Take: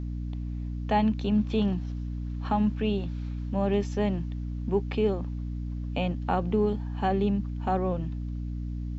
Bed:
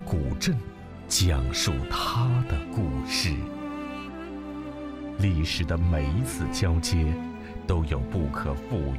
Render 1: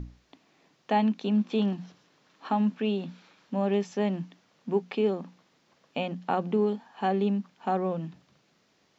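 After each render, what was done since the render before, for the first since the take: notches 60/120/180/240/300 Hz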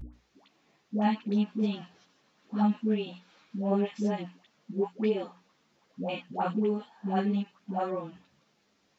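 dispersion highs, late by 0.131 s, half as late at 570 Hz; ensemble effect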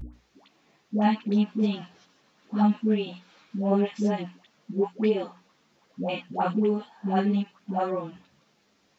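gain +4 dB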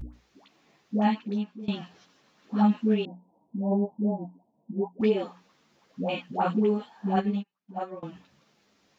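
0.94–1.68 fade out, to -20.5 dB; 3.05–5.01 rippled Chebyshev low-pass 980 Hz, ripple 6 dB; 7.16–8.03 upward expander 2.5:1, over -39 dBFS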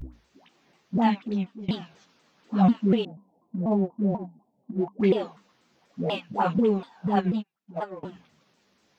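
in parallel at -11 dB: crossover distortion -38.5 dBFS; on the sum: shaped vibrato saw down 4.1 Hz, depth 250 cents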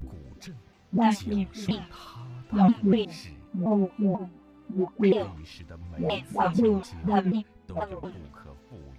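add bed -18 dB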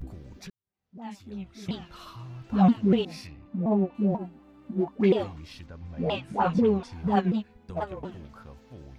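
0.5–2.08 fade in quadratic; 3.27–3.95 air absorption 130 m; 5.66–6.93 air absorption 67 m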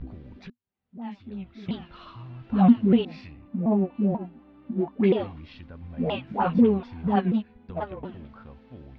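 LPF 3700 Hz 24 dB/oct; bell 240 Hz +8 dB 0.21 oct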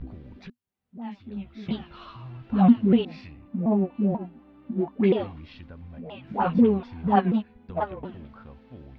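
1.35–2.37 doubler 14 ms -4 dB; 5.73–6.27 compressor 4:1, threshold -38 dBFS; 7.1–7.92 dynamic EQ 960 Hz, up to +6 dB, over -38 dBFS, Q 0.84

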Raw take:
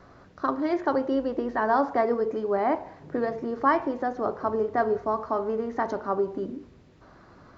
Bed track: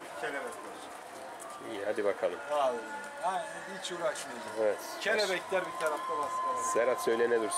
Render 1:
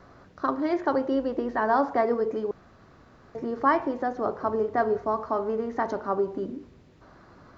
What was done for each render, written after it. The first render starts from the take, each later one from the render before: 2.51–3.35 room tone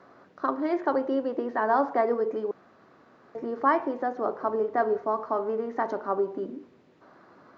HPF 240 Hz 12 dB/oct; high shelf 4400 Hz -10.5 dB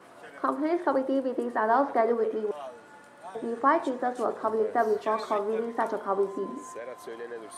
add bed track -11 dB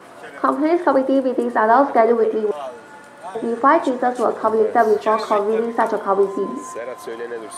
gain +10 dB; limiter -2 dBFS, peak gain reduction 2.5 dB

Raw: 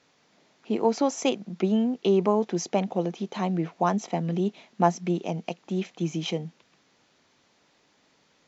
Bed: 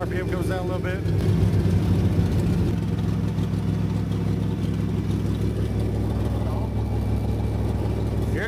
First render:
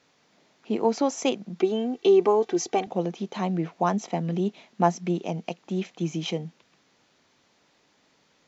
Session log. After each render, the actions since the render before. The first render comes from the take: 1.59–2.87 comb 2.6 ms, depth 76%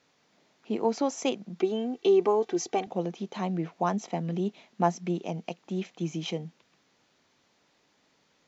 gain -3.5 dB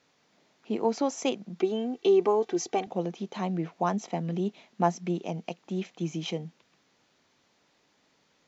nothing audible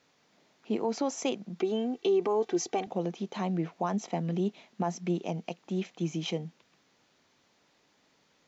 limiter -19.5 dBFS, peak gain reduction 9 dB

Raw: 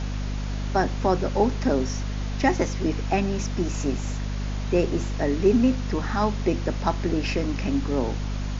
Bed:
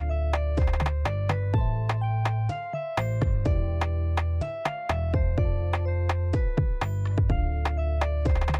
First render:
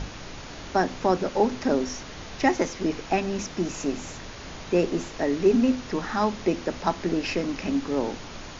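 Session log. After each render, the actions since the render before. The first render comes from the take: notches 50/100/150/200/250 Hz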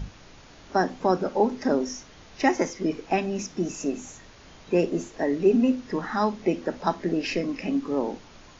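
noise print and reduce 10 dB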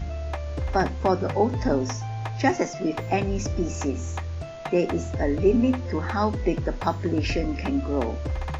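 add bed -5.5 dB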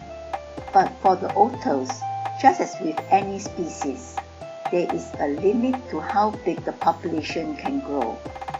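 HPF 190 Hz 12 dB/oct; bell 790 Hz +12 dB 0.23 oct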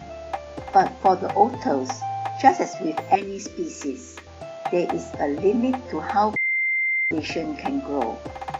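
3.15–4.27 fixed phaser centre 320 Hz, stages 4; 6.36–7.11 bleep 2090 Hz -19.5 dBFS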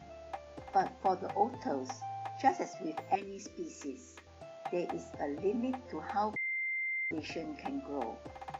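gain -13 dB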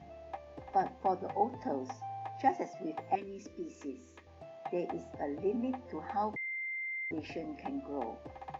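LPF 2200 Hz 6 dB/oct; notch 1400 Hz, Q 5.9

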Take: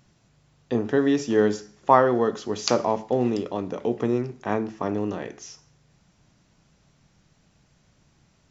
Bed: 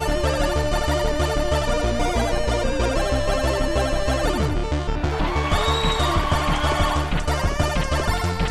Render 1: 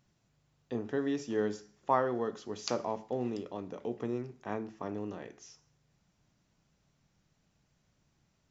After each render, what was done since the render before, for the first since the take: gain -11.5 dB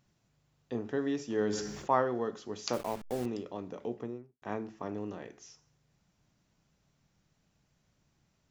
1.3–2.04 sustainer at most 45 dB/s; 2.73–3.26 level-crossing sampler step -39.5 dBFS; 3.83–4.42 studio fade out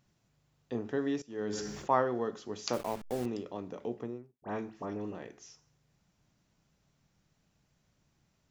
1.22–1.67 fade in, from -18.5 dB; 4.32–5.15 dispersion highs, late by 75 ms, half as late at 2200 Hz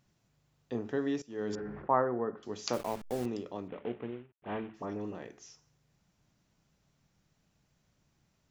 1.55–2.43 inverse Chebyshev low-pass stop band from 9200 Hz, stop band 80 dB; 3.68–4.74 CVSD 16 kbps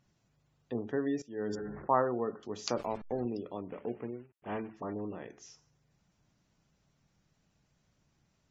spectral gate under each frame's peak -30 dB strong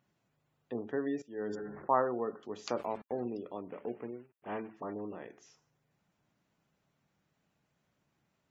HPF 240 Hz 6 dB/oct; bell 5600 Hz -9 dB 1.1 oct

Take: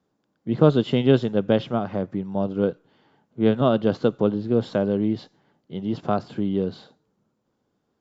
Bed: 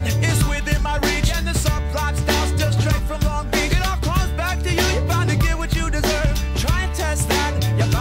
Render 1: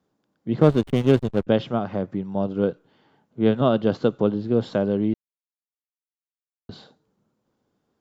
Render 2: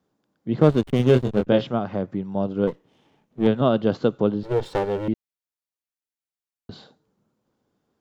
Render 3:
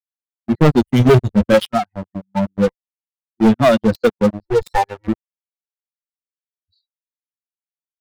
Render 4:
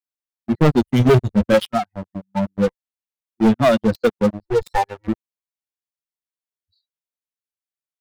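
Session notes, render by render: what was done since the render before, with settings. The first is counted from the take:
0.61–1.47 backlash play -22.5 dBFS; 5.14–6.69 mute
0.97–1.67 doubler 24 ms -4.5 dB; 2.67–3.47 minimum comb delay 0.32 ms; 4.43–5.08 minimum comb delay 2.2 ms
per-bin expansion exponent 3; sample leveller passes 5
gain -2.5 dB

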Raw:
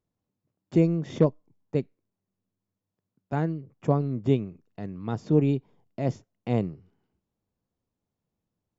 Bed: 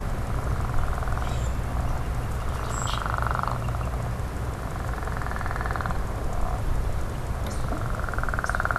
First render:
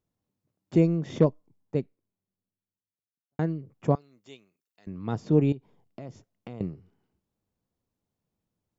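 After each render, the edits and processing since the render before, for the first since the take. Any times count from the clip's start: 1.26–3.39 studio fade out; 3.95–4.87 differentiator; 5.52–6.61 compressor 5:1, threshold -37 dBFS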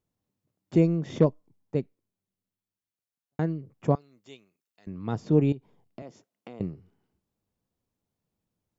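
6.02–6.6 HPF 250 Hz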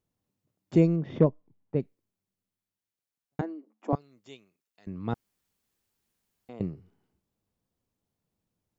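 0.96–1.8 air absorption 320 m; 3.41–3.93 rippled Chebyshev high-pass 210 Hz, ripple 9 dB; 5.14–6.49 room tone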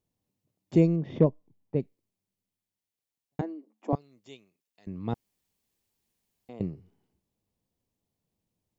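bell 1400 Hz -7 dB 0.58 oct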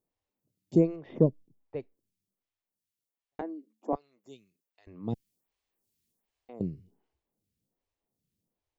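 photocell phaser 1.3 Hz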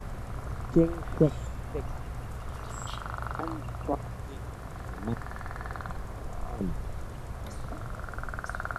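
add bed -9.5 dB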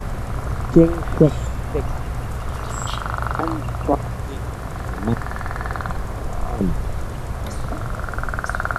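gain +11.5 dB; limiter -1 dBFS, peak gain reduction 3 dB

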